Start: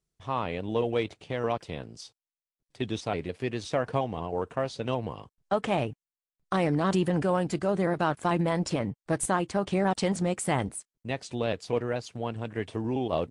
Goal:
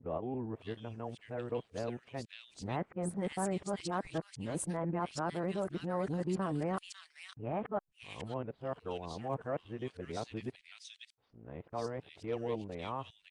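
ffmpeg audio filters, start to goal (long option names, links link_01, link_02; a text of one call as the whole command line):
ffmpeg -i in.wav -filter_complex "[0:a]areverse,acrossover=split=2000[link_01][link_02];[link_02]adelay=550[link_03];[link_01][link_03]amix=inputs=2:normalize=0,volume=-9dB" out.wav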